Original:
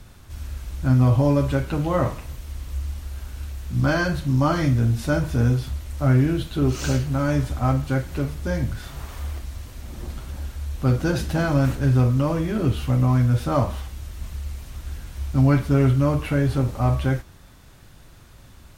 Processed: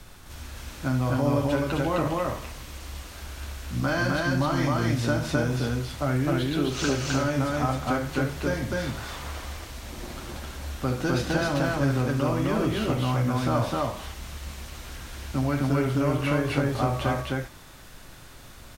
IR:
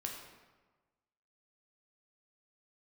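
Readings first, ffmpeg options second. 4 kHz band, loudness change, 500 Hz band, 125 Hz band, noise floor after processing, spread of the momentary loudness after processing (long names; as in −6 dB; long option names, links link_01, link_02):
+3.0 dB, −4.5 dB, −1.0 dB, −7.5 dB, −46 dBFS, 14 LU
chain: -filter_complex "[0:a]equalizer=frequency=82:width=0.33:gain=-8,acrossover=split=110|7300[link_01][link_02][link_03];[link_01]acompressor=threshold=-45dB:ratio=4[link_04];[link_02]acompressor=threshold=-27dB:ratio=4[link_05];[link_03]acompressor=threshold=-58dB:ratio=4[link_06];[link_04][link_05][link_06]amix=inputs=3:normalize=0,asplit=2[link_07][link_08];[link_08]aecho=0:1:69.97|259.5:0.316|0.891[link_09];[link_07][link_09]amix=inputs=2:normalize=0,volume=3dB"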